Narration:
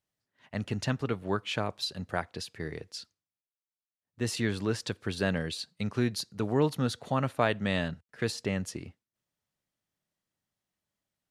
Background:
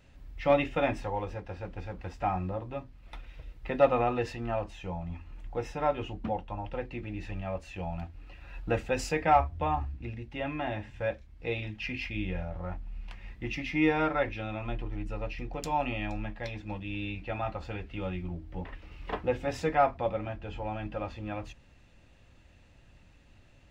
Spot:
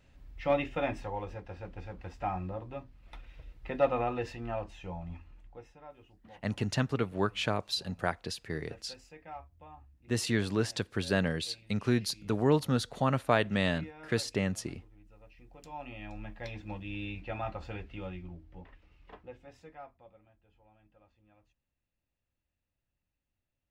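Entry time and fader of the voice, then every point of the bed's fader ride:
5.90 s, +0.5 dB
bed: 5.16 s -4 dB
5.84 s -22.5 dB
15.17 s -22.5 dB
16.51 s -3 dB
17.78 s -3 dB
20.3 s -29 dB

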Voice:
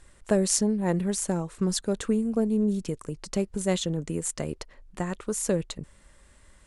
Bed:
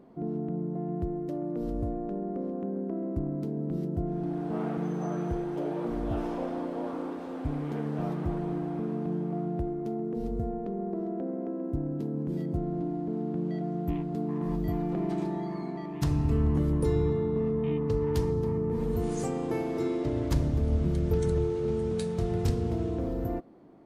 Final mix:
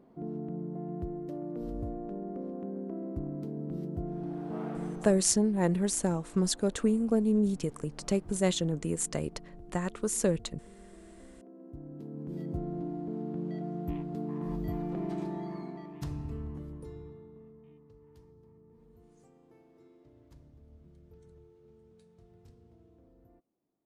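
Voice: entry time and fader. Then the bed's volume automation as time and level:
4.75 s, -1.5 dB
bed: 4.9 s -5 dB
5.29 s -20 dB
11.35 s -20 dB
12.5 s -4.5 dB
15.55 s -4.5 dB
17.93 s -30 dB

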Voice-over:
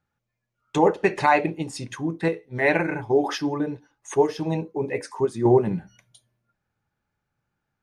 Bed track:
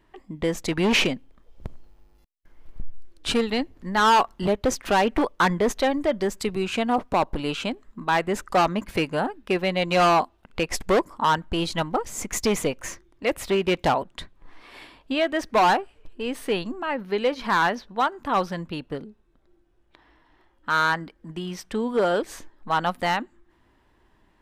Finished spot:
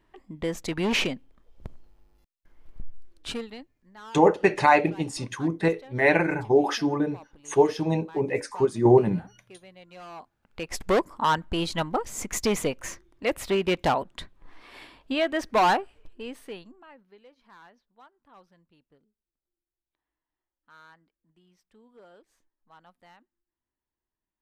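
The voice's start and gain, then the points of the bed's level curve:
3.40 s, +0.5 dB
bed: 3.17 s -4.5 dB
3.84 s -26 dB
10.06 s -26 dB
10.86 s -2 dB
15.98 s -2 dB
17.25 s -31 dB

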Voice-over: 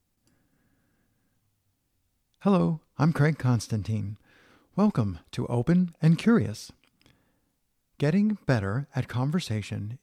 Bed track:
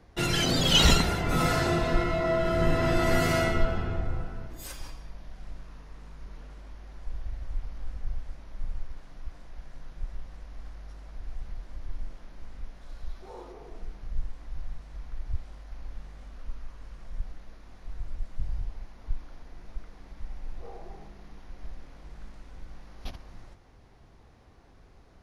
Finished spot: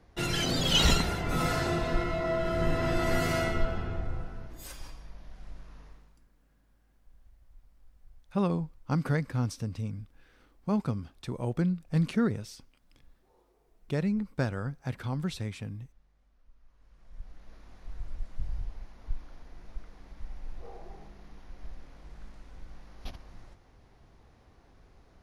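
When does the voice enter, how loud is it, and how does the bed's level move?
5.90 s, -5.5 dB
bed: 5.87 s -3.5 dB
6.28 s -23 dB
16.52 s -23 dB
17.56 s -2.5 dB

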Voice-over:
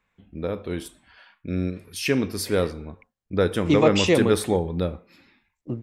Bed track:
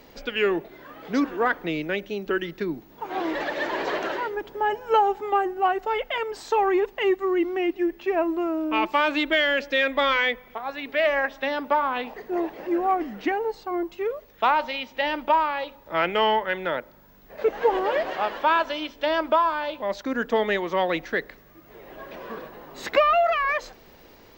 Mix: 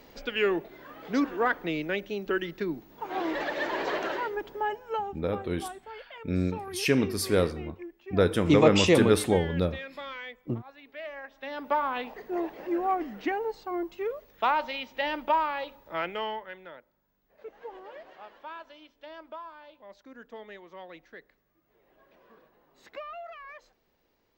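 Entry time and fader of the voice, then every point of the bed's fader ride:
4.80 s, -1.5 dB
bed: 4.52 s -3 dB
5.26 s -18 dB
11.26 s -18 dB
11.71 s -4.5 dB
15.77 s -4.5 dB
16.85 s -21.5 dB

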